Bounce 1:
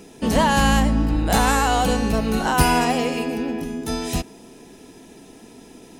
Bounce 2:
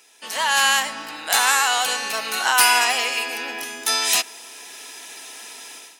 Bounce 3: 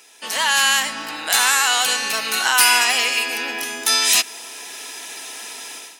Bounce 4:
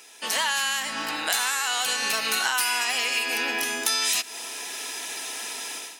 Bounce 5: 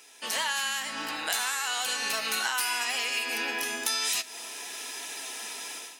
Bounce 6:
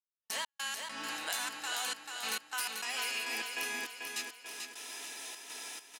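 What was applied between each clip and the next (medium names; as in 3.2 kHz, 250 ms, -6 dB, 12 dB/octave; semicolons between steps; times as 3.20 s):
high-pass 1.4 kHz 12 dB/octave; level rider gain up to 16 dB; trim -1 dB
dynamic bell 710 Hz, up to -6 dB, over -35 dBFS, Q 0.82; in parallel at +1.5 dB: peak limiter -10 dBFS, peak gain reduction 7 dB; on the sum: trim -2 dB
compression 10:1, threshold -21 dBFS, peak gain reduction 12 dB; on a send at -24 dB: reverberation RT60 0.40 s, pre-delay 47 ms
flange 0.98 Hz, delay 6.6 ms, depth 3.6 ms, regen +75%
trance gate "..x.x.xxxx.xx" 101 bpm -60 dB; feedback delay 439 ms, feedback 47%, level -5 dB; trim -7 dB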